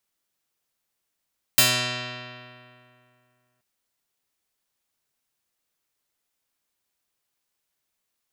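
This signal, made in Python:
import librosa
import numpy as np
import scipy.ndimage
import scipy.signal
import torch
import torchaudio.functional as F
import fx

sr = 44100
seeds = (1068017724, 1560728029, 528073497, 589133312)

y = fx.pluck(sr, length_s=2.03, note=47, decay_s=2.47, pick=0.29, brightness='medium')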